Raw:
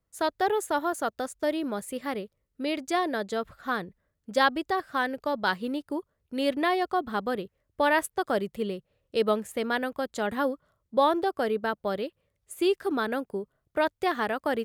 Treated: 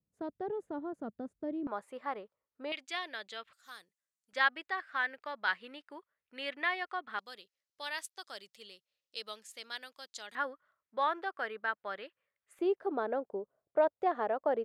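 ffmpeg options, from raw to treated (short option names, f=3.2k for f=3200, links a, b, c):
-af "asetnsamples=n=441:p=0,asendcmd='1.67 bandpass f 1000;2.72 bandpass f 2800;3.53 bandpass f 7500;4.33 bandpass f 2000;7.19 bandpass f 5000;10.35 bandpass f 1700;12.59 bandpass f 620',bandpass=f=190:t=q:w=1.7:csg=0"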